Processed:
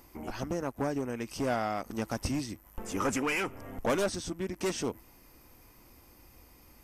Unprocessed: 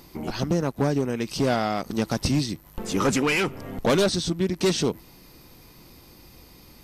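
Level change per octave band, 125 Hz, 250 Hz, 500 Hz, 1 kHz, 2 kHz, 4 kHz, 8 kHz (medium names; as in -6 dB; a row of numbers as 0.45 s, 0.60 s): -12.0 dB, -9.0 dB, -8.0 dB, -5.5 dB, -6.5 dB, -12.0 dB, -7.5 dB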